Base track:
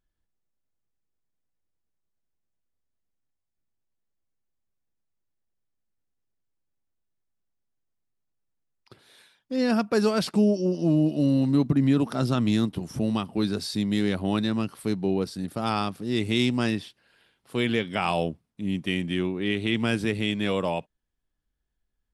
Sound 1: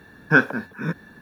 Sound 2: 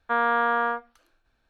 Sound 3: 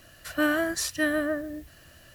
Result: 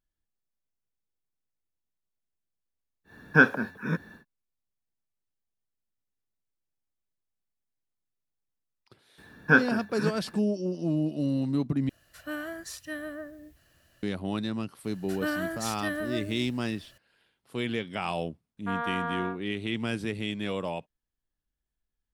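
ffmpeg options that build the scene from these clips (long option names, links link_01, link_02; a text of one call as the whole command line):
ffmpeg -i bed.wav -i cue0.wav -i cue1.wav -i cue2.wav -filter_complex "[1:a]asplit=2[link_01][link_02];[3:a]asplit=2[link_03][link_04];[0:a]volume=-6dB,asplit=2[link_05][link_06];[link_05]atrim=end=11.894[link_07];[link_03]atrim=end=2.14,asetpts=PTS-STARTPTS,volume=-11.5dB[link_08];[link_06]atrim=start=14.026[link_09];[link_01]atrim=end=1.21,asetpts=PTS-STARTPTS,volume=-2.5dB,afade=type=in:duration=0.1,afade=type=out:start_time=1.11:duration=0.1,adelay=3040[link_10];[link_02]atrim=end=1.21,asetpts=PTS-STARTPTS,volume=-4dB,afade=type=in:duration=0.004:curve=hsin,afade=type=out:start_time=1.206:duration=0.004:curve=hsin,adelay=9180[link_11];[link_04]atrim=end=2.14,asetpts=PTS-STARTPTS,volume=-6.5dB,afade=type=in:duration=0.004:curve=hsin,afade=type=out:start_time=2.136:duration=0.004:curve=hsin,adelay=14840[link_12];[2:a]atrim=end=1.49,asetpts=PTS-STARTPTS,volume=-9.5dB,afade=type=in:duration=0.004:curve=hsin,afade=type=out:start_time=1.486:duration=0.004:curve=hsin,adelay=18570[link_13];[link_07][link_08]acrossfade=duration=0.004:curve1=hsin:curve2=hsin[link_14];[link_14][link_09]acrossfade=duration=0.004:curve1=hsin:curve2=hsin[link_15];[link_15][link_10][link_11][link_12][link_13]amix=inputs=5:normalize=0" out.wav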